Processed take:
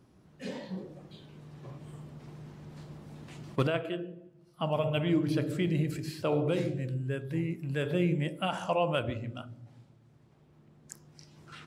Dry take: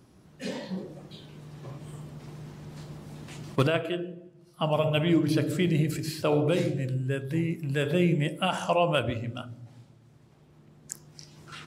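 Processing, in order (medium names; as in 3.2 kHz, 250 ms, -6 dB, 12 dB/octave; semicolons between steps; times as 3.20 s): treble shelf 4.1 kHz -6 dB; trim -4 dB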